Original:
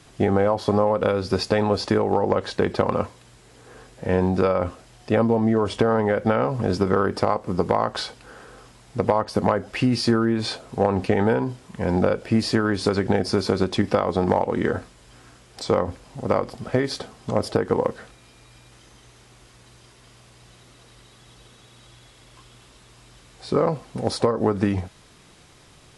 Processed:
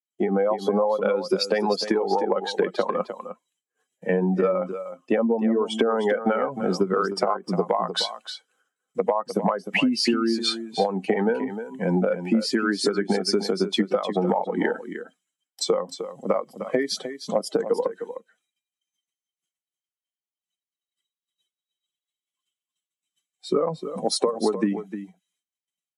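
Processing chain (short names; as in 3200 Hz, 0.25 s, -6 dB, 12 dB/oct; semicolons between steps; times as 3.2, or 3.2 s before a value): per-bin expansion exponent 2; expander -60 dBFS; AGC gain up to 8 dB; steep high-pass 180 Hz 48 dB/oct; compressor, threshold -25 dBFS, peak gain reduction 14 dB; echo 0.306 s -10.5 dB; gain +5.5 dB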